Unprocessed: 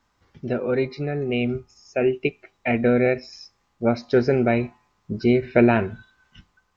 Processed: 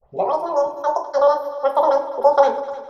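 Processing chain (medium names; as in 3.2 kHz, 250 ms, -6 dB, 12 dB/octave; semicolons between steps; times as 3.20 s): tape start-up on the opening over 0.75 s; treble shelf 2.6 kHz -9 dB; multi-head delay 238 ms, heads all three, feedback 45%, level -19 dB; simulated room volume 3000 m³, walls furnished, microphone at 2.3 m; speed mistake 33 rpm record played at 78 rpm; high-order bell 640 Hz +15 dB; trim -11.5 dB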